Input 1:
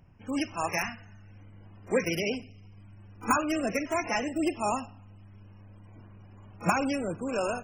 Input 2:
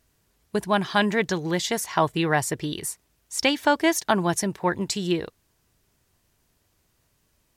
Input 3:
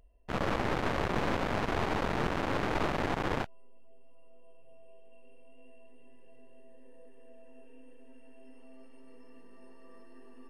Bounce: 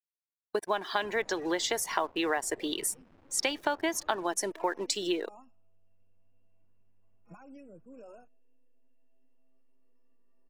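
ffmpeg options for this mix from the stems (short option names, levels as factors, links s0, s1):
-filter_complex "[0:a]alimiter=limit=0.0708:level=0:latency=1:release=243,adelay=650,volume=0.15[s0];[1:a]highpass=f=320:w=0.5412,highpass=f=320:w=1.3066,acompressor=threshold=0.0447:ratio=6,acrusher=bits=6:mix=0:aa=0.5,volume=1.12,asplit=2[s1][s2];[2:a]acompressor=threshold=0.0141:ratio=6,adelay=750,volume=0.282[s3];[s2]apad=whole_len=365494[s4];[s0][s4]sidechaincompress=threshold=0.0158:ratio=8:attack=12:release=178[s5];[s5][s1][s3]amix=inputs=3:normalize=0,afftdn=nr=13:nf=-43"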